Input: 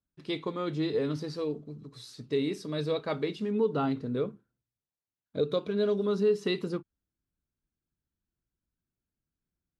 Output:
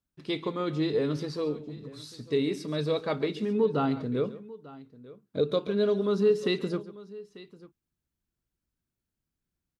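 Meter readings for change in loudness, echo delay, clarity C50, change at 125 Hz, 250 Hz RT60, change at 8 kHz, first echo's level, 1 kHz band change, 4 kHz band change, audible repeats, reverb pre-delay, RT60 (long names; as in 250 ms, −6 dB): +2.0 dB, 138 ms, no reverb audible, +2.5 dB, no reverb audible, can't be measured, −16.5 dB, +2.0 dB, +2.0 dB, 2, no reverb audible, no reverb audible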